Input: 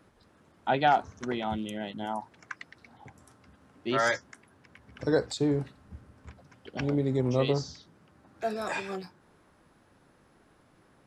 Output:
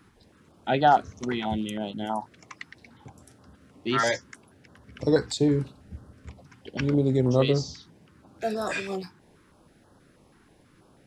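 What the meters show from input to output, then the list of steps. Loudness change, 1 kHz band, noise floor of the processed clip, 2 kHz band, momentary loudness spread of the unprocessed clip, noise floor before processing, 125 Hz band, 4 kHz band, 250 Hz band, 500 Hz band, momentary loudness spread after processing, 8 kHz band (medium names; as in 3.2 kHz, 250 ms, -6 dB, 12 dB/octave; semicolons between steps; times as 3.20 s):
+3.5 dB, +3.5 dB, -59 dBFS, +1.0 dB, 17 LU, -63 dBFS, +5.0 dB, +4.0 dB, +4.5 dB, +3.5 dB, 22 LU, +5.0 dB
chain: step-sequenced notch 6.2 Hz 590–2300 Hz; trim +5 dB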